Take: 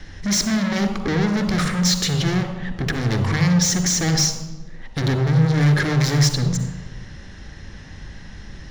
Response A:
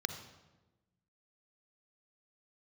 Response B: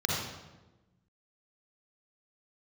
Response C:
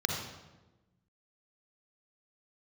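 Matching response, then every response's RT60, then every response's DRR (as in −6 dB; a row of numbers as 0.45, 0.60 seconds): A; 1.1, 1.1, 1.1 seconds; 7.5, −3.5, 1.0 decibels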